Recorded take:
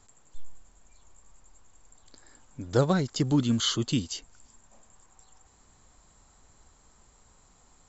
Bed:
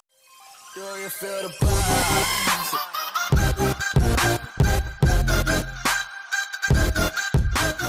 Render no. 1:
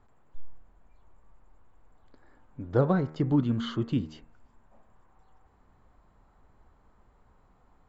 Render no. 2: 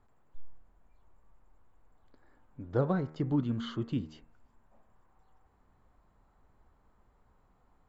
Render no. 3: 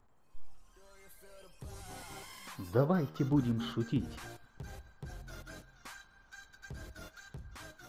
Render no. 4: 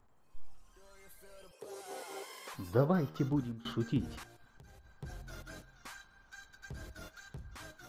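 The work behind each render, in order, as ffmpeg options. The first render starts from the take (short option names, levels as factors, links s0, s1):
-af "lowpass=1600,bandreject=f=77.62:t=h:w=4,bandreject=f=155.24:t=h:w=4,bandreject=f=232.86:t=h:w=4,bandreject=f=310.48:t=h:w=4,bandreject=f=388.1:t=h:w=4,bandreject=f=465.72:t=h:w=4,bandreject=f=543.34:t=h:w=4,bandreject=f=620.96:t=h:w=4,bandreject=f=698.58:t=h:w=4,bandreject=f=776.2:t=h:w=4,bandreject=f=853.82:t=h:w=4,bandreject=f=931.44:t=h:w=4,bandreject=f=1009.06:t=h:w=4,bandreject=f=1086.68:t=h:w=4,bandreject=f=1164.3:t=h:w=4,bandreject=f=1241.92:t=h:w=4,bandreject=f=1319.54:t=h:w=4,bandreject=f=1397.16:t=h:w=4,bandreject=f=1474.78:t=h:w=4,bandreject=f=1552.4:t=h:w=4,bandreject=f=1630.02:t=h:w=4,bandreject=f=1707.64:t=h:w=4,bandreject=f=1785.26:t=h:w=4,bandreject=f=1862.88:t=h:w=4,bandreject=f=1940.5:t=h:w=4,bandreject=f=2018.12:t=h:w=4,bandreject=f=2095.74:t=h:w=4,bandreject=f=2173.36:t=h:w=4,bandreject=f=2250.98:t=h:w=4,bandreject=f=2328.6:t=h:w=4,bandreject=f=2406.22:t=h:w=4,bandreject=f=2483.84:t=h:w=4,bandreject=f=2561.46:t=h:w=4,bandreject=f=2639.08:t=h:w=4,bandreject=f=2716.7:t=h:w=4"
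-af "volume=0.562"
-filter_complex "[1:a]volume=0.0422[s0];[0:a][s0]amix=inputs=2:normalize=0"
-filter_complex "[0:a]asettb=1/sr,asplit=3[s0][s1][s2];[s0]atrim=end=1.514[s3];[s1]atrim=start=1.51:end=2.54,asetpts=PTS-STARTPTS,afade=t=in:d=0.004:c=qsin,afade=t=out:st=1.026:d=0.004:c=qsin,highpass=f=440:t=q:w=4.8[s4];[s2]atrim=start=2.536[s5];[s3][s4]acrossfade=d=0.004:c1=hsin:c2=qsin[s6];[s6][s5]acrossfade=d=0.004:c1=qsin:c2=hsin,asettb=1/sr,asplit=3[s7][s8][s9];[s7]atrim=end=4.234[s10];[s8]atrim=start=4.23:end=4.9,asetpts=PTS-STARTPTS,afade=t=in:d=0.004:c=qsin,afade=t=out:st=0.666:d=0.004:c=qsin,acompressor=threshold=0.00224:ratio=10:attack=3.2:release=140:knee=1:detection=peak[s11];[s9]atrim=start=4.896[s12];[s10][s11]acrossfade=d=0.004:c1=hsin:c2=qsin[s13];[s13][s12]acrossfade=d=0.004:c1=qsin:c2=hsin,asplit=2[s14][s15];[s14]atrim=end=3.65,asetpts=PTS-STARTPTS,afade=t=out:st=3.19:d=0.46:silence=0.0794328[s16];[s15]atrim=start=3.65,asetpts=PTS-STARTPTS,afade=t=in:d=0.004:c=hsin:silence=0.0794328[s17];[s16][s17]concat=n=2:v=0:a=1"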